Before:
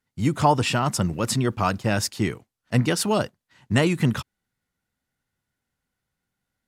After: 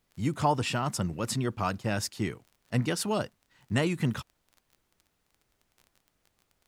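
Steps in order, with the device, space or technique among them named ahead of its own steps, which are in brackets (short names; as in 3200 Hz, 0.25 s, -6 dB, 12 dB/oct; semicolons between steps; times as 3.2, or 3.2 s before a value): vinyl LP (crackle 25/s -37 dBFS; pink noise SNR 43 dB); gain -7 dB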